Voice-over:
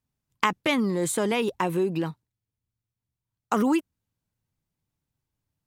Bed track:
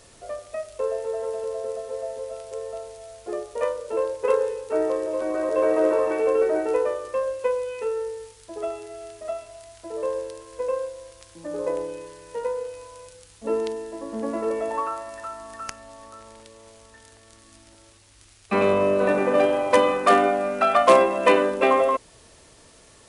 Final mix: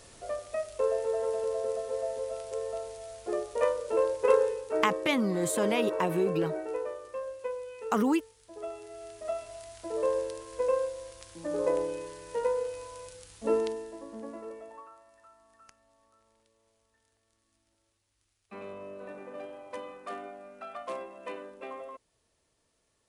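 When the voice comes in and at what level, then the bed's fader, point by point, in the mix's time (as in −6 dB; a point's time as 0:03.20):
4.40 s, −3.5 dB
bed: 0:04.37 −1.5 dB
0:05.24 −11.5 dB
0:08.42 −11.5 dB
0:09.53 −1 dB
0:13.48 −1 dB
0:14.89 −23 dB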